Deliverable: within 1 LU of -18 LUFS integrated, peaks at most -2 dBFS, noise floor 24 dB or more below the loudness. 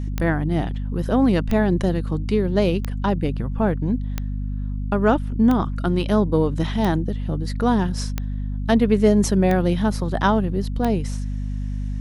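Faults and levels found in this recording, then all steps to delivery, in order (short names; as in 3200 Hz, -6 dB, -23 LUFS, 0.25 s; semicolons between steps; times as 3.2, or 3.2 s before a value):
clicks 9; hum 50 Hz; harmonics up to 250 Hz; hum level -23 dBFS; loudness -21.5 LUFS; peak -4.5 dBFS; loudness target -18.0 LUFS
-> de-click; de-hum 50 Hz, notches 5; gain +3.5 dB; limiter -2 dBFS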